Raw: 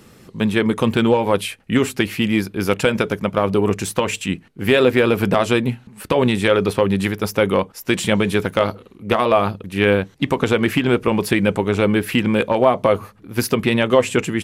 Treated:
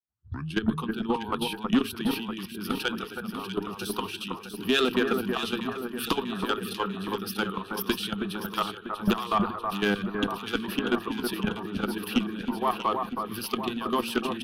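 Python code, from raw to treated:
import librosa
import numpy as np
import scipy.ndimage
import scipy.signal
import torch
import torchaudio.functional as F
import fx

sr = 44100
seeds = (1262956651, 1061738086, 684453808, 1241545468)

y = fx.tape_start_head(x, sr, length_s=0.61)
y = fx.recorder_agc(y, sr, target_db=-8.0, rise_db_per_s=34.0, max_gain_db=30)
y = scipy.signal.sosfilt(scipy.signal.butter(4, 83.0, 'highpass', fs=sr, output='sos'), y)
y = fx.noise_reduce_blind(y, sr, reduce_db=15)
y = fx.cheby_harmonics(y, sr, harmonics=(3, 5), levels_db=(-28, -32), full_scale_db=2.0)
y = fx.level_steps(y, sr, step_db=15)
y = fx.fixed_phaser(y, sr, hz=2100.0, stages=6)
y = fx.tube_stage(y, sr, drive_db=15.0, bias=0.2)
y = fx.echo_alternate(y, sr, ms=321, hz=1800.0, feedback_pct=77, wet_db=-4)
y = fx.band_widen(y, sr, depth_pct=40)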